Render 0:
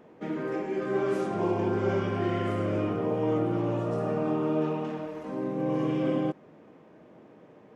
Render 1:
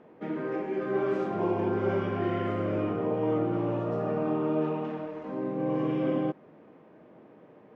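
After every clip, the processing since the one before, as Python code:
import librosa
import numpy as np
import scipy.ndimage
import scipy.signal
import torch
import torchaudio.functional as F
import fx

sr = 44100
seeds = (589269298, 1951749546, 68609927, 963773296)

y = scipy.signal.sosfilt(scipy.signal.bessel(2, 2800.0, 'lowpass', norm='mag', fs=sr, output='sos'), x)
y = fx.low_shelf(y, sr, hz=100.0, db=-5.5)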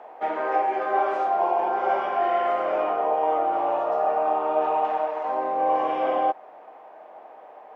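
y = fx.highpass_res(x, sr, hz=750.0, q=4.9)
y = fx.rider(y, sr, range_db=3, speed_s=0.5)
y = y * librosa.db_to_amplitude(5.0)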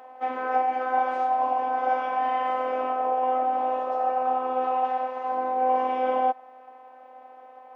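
y = fx.robotise(x, sr, hz=256.0)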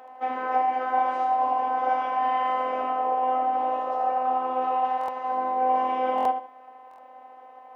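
y = fx.echo_feedback(x, sr, ms=77, feedback_pct=29, wet_db=-8.0)
y = fx.buffer_glitch(y, sr, at_s=(4.99, 6.16, 6.89), block=1024, repeats=3)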